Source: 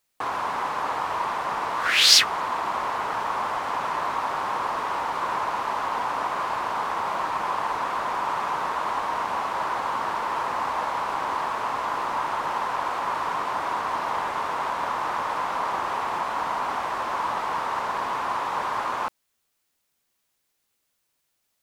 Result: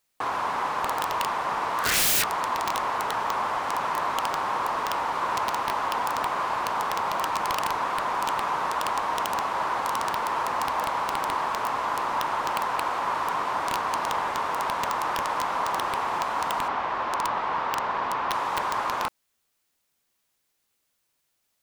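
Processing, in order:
0:16.68–0:18.32: low-pass filter 3,900 Hz 12 dB per octave
wrap-around overflow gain 17 dB

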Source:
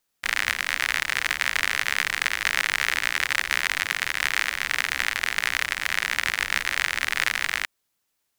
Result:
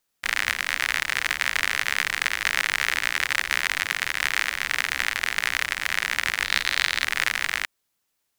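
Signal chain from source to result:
0:06.44–0:07.04: parametric band 4,000 Hz +8.5 dB 0.56 octaves

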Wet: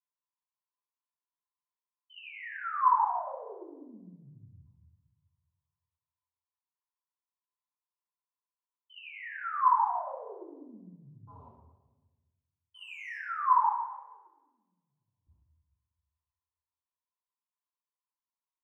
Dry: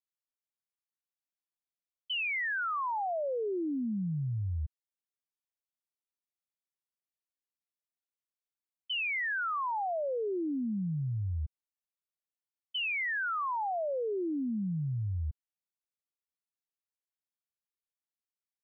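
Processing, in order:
0:11.27–0:13.16: leveller curve on the samples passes 3
0:13.67–0:15.27: noise gate −29 dBFS, range −31 dB
resonant band-pass 1,000 Hz, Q 11
convolution reverb RT60 1.2 s, pre-delay 3 ms, DRR −11.5 dB

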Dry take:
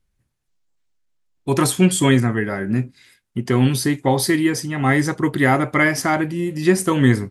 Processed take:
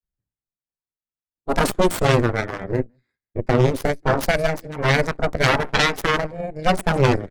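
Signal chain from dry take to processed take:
adaptive Wiener filter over 15 samples
on a send: single-tap delay 165 ms −23 dB
on the sum: harmonic generator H 3 −8 dB, 6 −8 dB, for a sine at −2 dBFS
granular cloud 100 ms, grains 20 per second, spray 11 ms, pitch spread up and down by 0 semitones
level −1 dB

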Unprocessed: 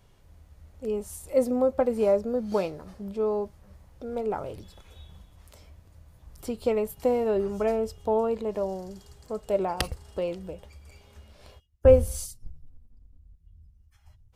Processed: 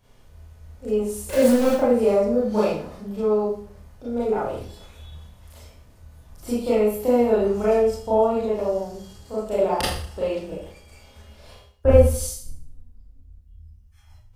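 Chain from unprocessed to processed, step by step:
0:01.29–0:01.71: converter with a step at zero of −27 dBFS
four-comb reverb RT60 0.52 s, combs from 26 ms, DRR −9 dB
level −3.5 dB

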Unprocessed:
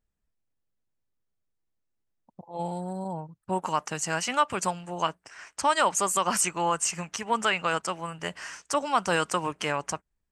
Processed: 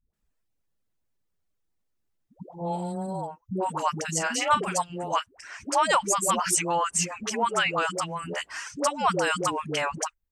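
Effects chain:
reverb reduction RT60 0.53 s
in parallel at −3 dB: downward compressor, threshold −34 dBFS, peak gain reduction 15.5 dB
0:03.98–0:04.63: on the sum: double-tracking delay 38 ms −10 dB
all-pass dispersion highs, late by 137 ms, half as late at 430 Hz

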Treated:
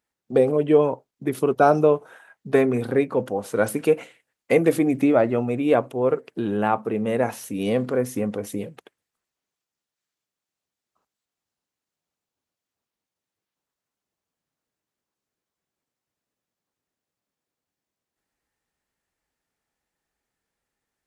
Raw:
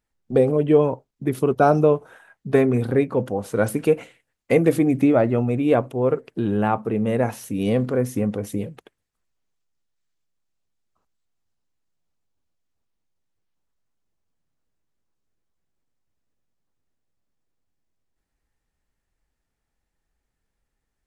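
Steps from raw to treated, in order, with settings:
high-pass filter 280 Hz 6 dB per octave
level +1 dB

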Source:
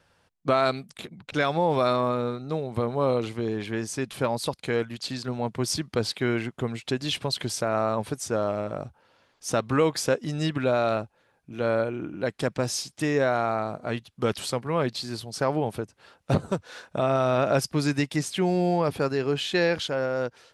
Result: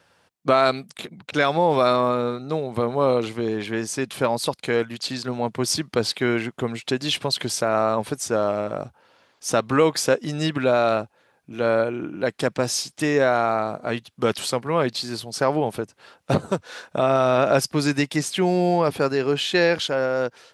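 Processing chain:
high-pass filter 180 Hz 6 dB per octave
level +5 dB

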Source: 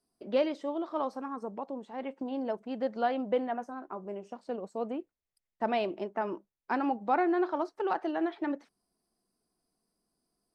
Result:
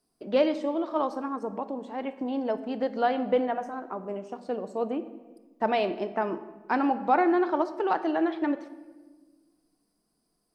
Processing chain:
rectangular room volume 1,000 cubic metres, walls mixed, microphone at 0.5 metres
level +4.5 dB

